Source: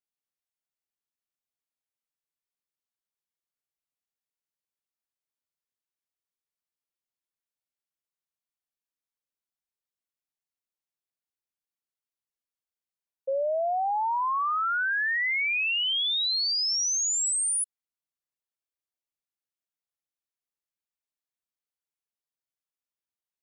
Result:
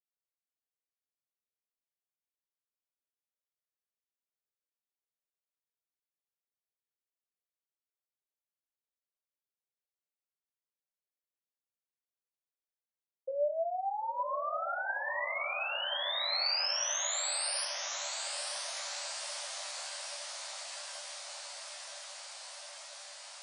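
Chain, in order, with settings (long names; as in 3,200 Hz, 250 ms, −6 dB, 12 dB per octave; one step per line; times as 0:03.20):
resonators tuned to a chord C2 major, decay 0.34 s
high-pass filter sweep 460 Hz → 3,800 Hz, 0:15.45–0:16.47
feedback delay with all-pass diffusion 998 ms, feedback 78%, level −6.5 dB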